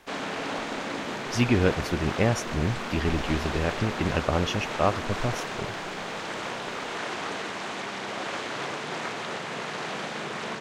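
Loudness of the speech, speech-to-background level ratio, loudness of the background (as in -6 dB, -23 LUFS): -27.5 LUFS, 5.0 dB, -32.5 LUFS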